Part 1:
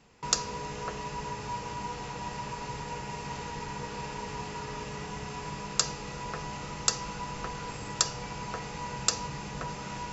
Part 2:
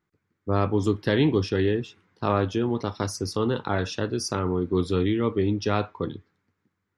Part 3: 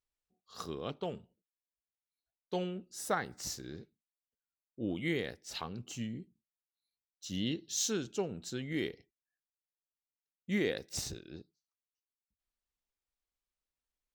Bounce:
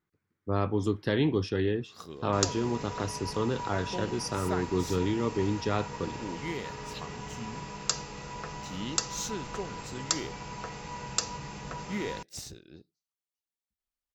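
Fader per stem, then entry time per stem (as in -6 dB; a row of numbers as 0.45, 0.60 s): -2.5, -5.0, -3.0 dB; 2.10, 0.00, 1.40 s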